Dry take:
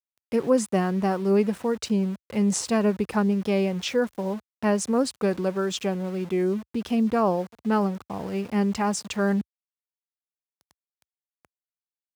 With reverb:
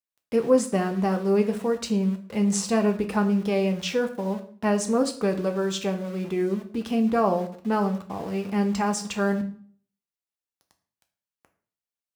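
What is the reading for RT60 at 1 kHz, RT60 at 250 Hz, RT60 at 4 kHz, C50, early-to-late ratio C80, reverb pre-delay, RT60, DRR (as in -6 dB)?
0.50 s, 0.55 s, 0.40 s, 12.5 dB, 16.5 dB, 3 ms, 0.45 s, 5.0 dB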